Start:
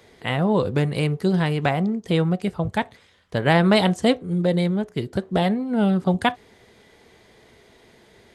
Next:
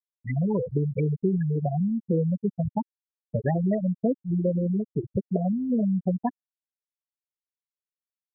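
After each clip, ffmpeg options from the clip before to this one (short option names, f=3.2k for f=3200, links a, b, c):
-filter_complex "[0:a]acrossover=split=450|1800[a][b][c];[a]acompressor=threshold=-29dB:ratio=4[d];[b]acompressor=threshold=-34dB:ratio=4[e];[c]acompressor=threshold=-31dB:ratio=4[f];[d][e][f]amix=inputs=3:normalize=0,afftfilt=real='re*gte(hypot(re,im),0.2)':imag='im*gte(hypot(re,im),0.2)':win_size=1024:overlap=0.75,volume=5dB"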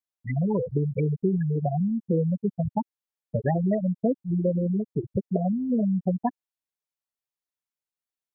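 -af "equalizer=f=790:t=o:w=0.77:g=2.5"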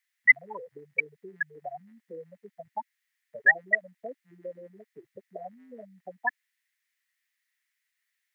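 -af "highpass=f=1.9k:t=q:w=7.4,volume=9dB"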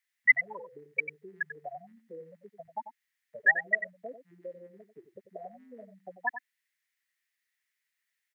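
-af "aecho=1:1:93:0.282,volume=-3dB"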